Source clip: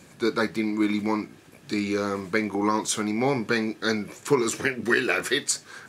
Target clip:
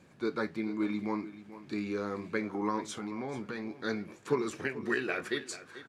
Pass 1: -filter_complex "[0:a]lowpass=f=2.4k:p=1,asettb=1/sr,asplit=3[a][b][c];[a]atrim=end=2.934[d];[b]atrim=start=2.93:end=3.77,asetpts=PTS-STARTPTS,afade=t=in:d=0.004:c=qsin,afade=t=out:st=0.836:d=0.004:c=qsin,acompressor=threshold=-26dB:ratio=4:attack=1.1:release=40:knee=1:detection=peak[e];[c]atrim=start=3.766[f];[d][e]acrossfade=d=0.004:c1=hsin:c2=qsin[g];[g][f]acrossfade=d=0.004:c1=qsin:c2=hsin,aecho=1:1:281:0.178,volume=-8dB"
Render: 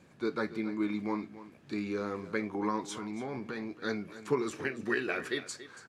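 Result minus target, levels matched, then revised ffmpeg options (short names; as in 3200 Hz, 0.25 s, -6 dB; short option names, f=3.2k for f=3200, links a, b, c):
echo 0.156 s early
-filter_complex "[0:a]lowpass=f=2.4k:p=1,asettb=1/sr,asplit=3[a][b][c];[a]atrim=end=2.934[d];[b]atrim=start=2.93:end=3.77,asetpts=PTS-STARTPTS,afade=t=in:d=0.004:c=qsin,afade=t=out:st=0.836:d=0.004:c=qsin,acompressor=threshold=-26dB:ratio=4:attack=1.1:release=40:knee=1:detection=peak[e];[c]atrim=start=3.766[f];[d][e]acrossfade=d=0.004:c1=hsin:c2=qsin[g];[g][f]acrossfade=d=0.004:c1=qsin:c2=hsin,aecho=1:1:437:0.178,volume=-8dB"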